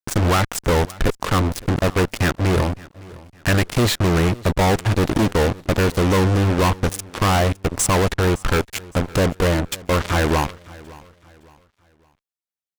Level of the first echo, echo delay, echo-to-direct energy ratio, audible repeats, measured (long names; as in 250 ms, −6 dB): −21.5 dB, 562 ms, −21.0 dB, 2